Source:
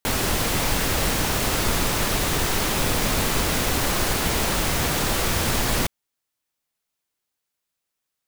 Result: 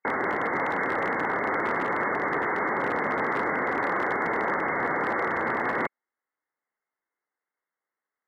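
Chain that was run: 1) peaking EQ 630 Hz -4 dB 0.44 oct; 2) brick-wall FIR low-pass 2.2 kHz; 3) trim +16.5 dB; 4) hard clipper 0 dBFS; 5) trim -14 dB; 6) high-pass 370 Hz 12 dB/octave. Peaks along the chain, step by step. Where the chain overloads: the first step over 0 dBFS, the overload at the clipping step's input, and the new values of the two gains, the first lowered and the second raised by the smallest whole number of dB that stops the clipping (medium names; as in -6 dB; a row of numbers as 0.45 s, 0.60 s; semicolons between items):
-9.0 dBFS, -11.5 dBFS, +5.0 dBFS, 0.0 dBFS, -14.0 dBFS, -14.0 dBFS; step 3, 5.0 dB; step 3 +11.5 dB, step 5 -9 dB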